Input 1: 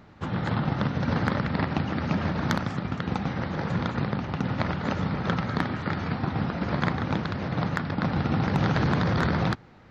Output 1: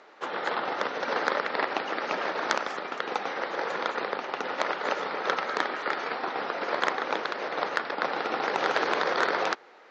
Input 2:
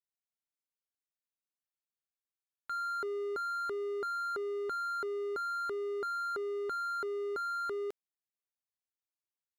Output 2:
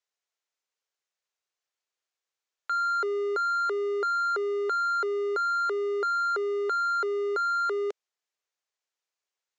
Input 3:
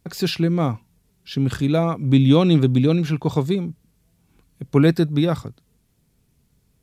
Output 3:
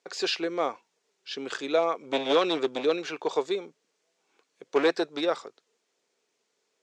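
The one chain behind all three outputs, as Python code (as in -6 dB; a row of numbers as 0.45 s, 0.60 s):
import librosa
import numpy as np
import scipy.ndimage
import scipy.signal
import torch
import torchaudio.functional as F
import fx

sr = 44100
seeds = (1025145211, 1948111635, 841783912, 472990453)

y = np.minimum(x, 2.0 * 10.0 ** (-13.5 / 20.0) - x)
y = scipy.signal.sosfilt(scipy.signal.ellip(3, 1.0, 80, [420.0, 6900.0], 'bandpass', fs=sr, output='sos'), y)
y = y * 10.0 ** (-30 / 20.0) / np.sqrt(np.mean(np.square(y)))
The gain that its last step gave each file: +4.0 dB, +9.0 dB, -1.0 dB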